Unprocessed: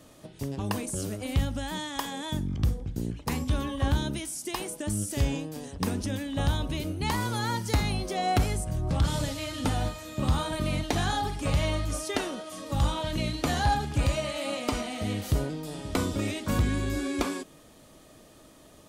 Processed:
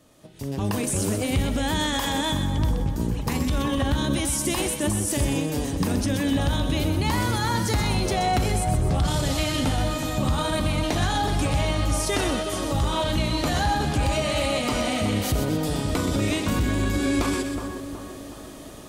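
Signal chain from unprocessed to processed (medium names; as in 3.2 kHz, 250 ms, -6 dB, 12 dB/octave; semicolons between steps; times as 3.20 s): peak limiter -27 dBFS, peak gain reduction 11 dB; level rider gain up to 15 dB; two-band feedback delay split 1.4 kHz, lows 369 ms, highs 126 ms, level -7.5 dB; trim -4.5 dB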